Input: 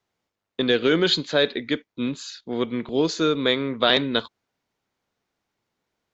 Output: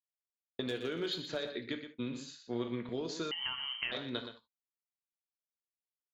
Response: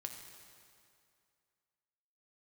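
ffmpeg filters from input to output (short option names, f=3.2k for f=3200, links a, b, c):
-filter_complex "[0:a]agate=range=-33dB:threshold=-30dB:ratio=3:detection=peak,acompressor=threshold=-25dB:ratio=12,asettb=1/sr,asplit=3[a][b][c];[a]atrim=end=0.664[d];[b]atrim=start=0.66:end=1.37,asetpts=PTS-STARTPTS,afade=t=in:d=0.004:c=qsin,afade=t=out:st=0.706:d=0.004:c=qsin,asoftclip=type=hard:threshold=-20.5dB[e];[c]atrim=start=1.366[f];[d][e]acrossfade=d=0.004:c1=hsin:c2=qsin[g];[g][f]acrossfade=d=0.004:c1=qsin:c2=hsin,asettb=1/sr,asplit=3[h][i][j];[h]atrim=end=2.104[k];[i]atrim=start=2.1:end=2.68,asetpts=PTS-STARTPTS,afade=t=in:d=0.004:c=qsin,afade=t=out:st=0.576:d=0.004:c=qsin,asplit=2[l][m];[m]adelay=42,volume=-7dB[n];[l][n]amix=inputs=2:normalize=0,atrim=end_sample=25578[o];[j]atrim=start=2.676[p];[k][o]acrossfade=d=0.004:c1=hsin:c2=qsin[q];[q][p]acrossfade=d=0.004:c1=qsin:c2=hsin,aecho=1:1:120:0.335[r];[1:a]atrim=start_sample=2205,atrim=end_sample=3528[s];[r][s]afir=irnorm=-1:irlink=0,asettb=1/sr,asplit=3[t][u][v];[t]atrim=end=3.314[w];[u]atrim=start=3.31:end=3.92,asetpts=PTS-STARTPTS,afade=t=in:d=0.004:c=qsin,afade=t=out:st=0.606:d=0.004:c=qsin,lowpass=f=2.8k:t=q:w=0.5098,lowpass=f=2.8k:t=q:w=0.6013,lowpass=f=2.8k:t=q:w=0.9,lowpass=f=2.8k:t=q:w=2.563,afreqshift=-3300[x];[v]atrim=start=3.916[y];[w][x]acrossfade=d=0.004:c1=hsin:c2=qsin[z];[z][y]acrossfade=d=0.004:c1=qsin:c2=hsin,volume=-4.5dB"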